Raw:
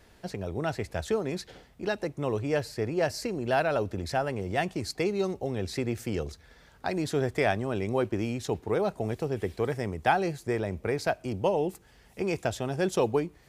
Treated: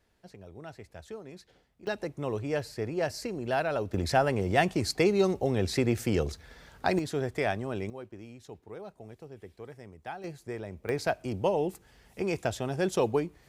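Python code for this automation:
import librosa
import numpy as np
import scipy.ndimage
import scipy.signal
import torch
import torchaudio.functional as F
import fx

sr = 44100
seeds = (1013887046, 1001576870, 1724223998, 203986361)

y = fx.gain(x, sr, db=fx.steps((0.0, -14.0), (1.87, -3.0), (3.94, 4.0), (6.99, -3.5), (7.9, -16.0), (10.24, -8.5), (10.89, -1.0)))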